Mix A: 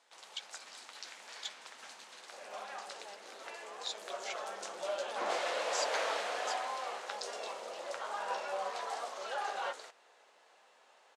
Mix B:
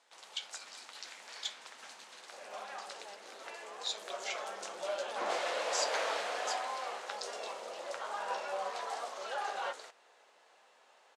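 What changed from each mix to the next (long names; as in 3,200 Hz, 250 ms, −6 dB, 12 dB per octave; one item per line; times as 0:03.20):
speech: send on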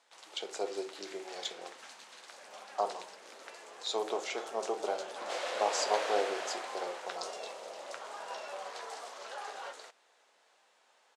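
speech: remove Butterworth high-pass 1,500 Hz
second sound −6.5 dB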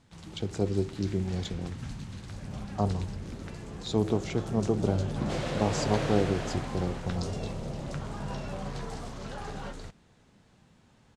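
speech: send −11.0 dB
master: remove high-pass filter 530 Hz 24 dB per octave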